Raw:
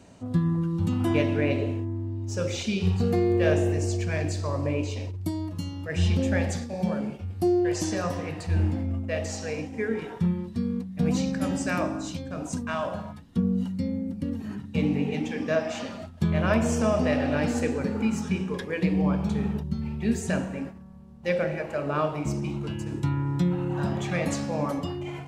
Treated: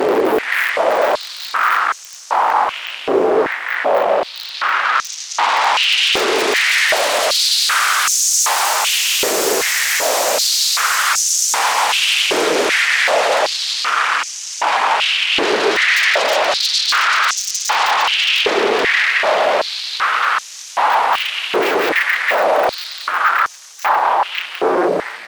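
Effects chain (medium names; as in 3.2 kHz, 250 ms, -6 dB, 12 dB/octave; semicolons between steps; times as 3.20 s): Paulstretch 14×, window 0.50 s, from 8.65 s; integer overflow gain 20 dB; level rider gain up to 5.5 dB; sine folder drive 16 dB, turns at -14.5 dBFS; on a send: feedback delay 726 ms, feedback 52%, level -21 dB; on the sum: step-sequenced high-pass 2.6 Hz 400–6200 Hz; trim -1 dB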